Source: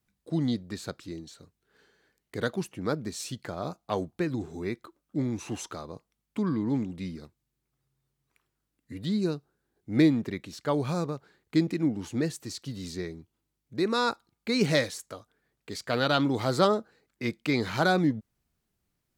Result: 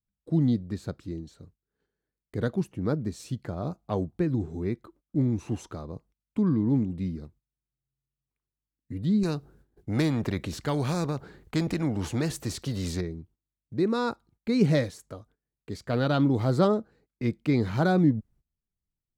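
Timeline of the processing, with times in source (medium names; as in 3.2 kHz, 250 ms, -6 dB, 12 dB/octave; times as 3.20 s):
9.23–13.01 s: spectrum-flattening compressor 2:1
whole clip: treble shelf 6.6 kHz +9.5 dB; gate -59 dBFS, range -18 dB; tilt EQ -3.5 dB/octave; trim -3.5 dB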